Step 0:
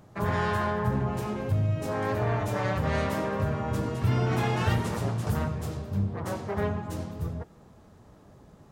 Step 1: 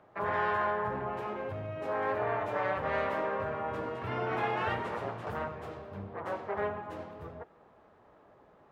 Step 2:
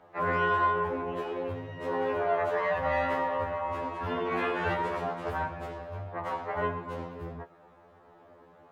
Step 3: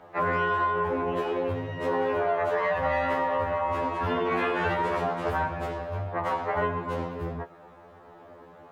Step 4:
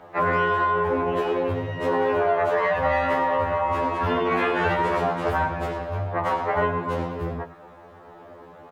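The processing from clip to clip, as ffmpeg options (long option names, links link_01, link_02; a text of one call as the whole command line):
ffmpeg -i in.wav -filter_complex "[0:a]acrossover=split=370 2900:gain=0.141 1 0.0708[link_01][link_02][link_03];[link_01][link_02][link_03]amix=inputs=3:normalize=0" out.wav
ffmpeg -i in.wav -af "afftfilt=real='re*2*eq(mod(b,4),0)':imag='im*2*eq(mod(b,4),0)':win_size=2048:overlap=0.75,volume=6dB" out.wav
ffmpeg -i in.wav -af "acompressor=threshold=-29dB:ratio=6,volume=6.5dB" out.wav
ffmpeg -i in.wav -af "aecho=1:1:105:0.168,volume=4dB" out.wav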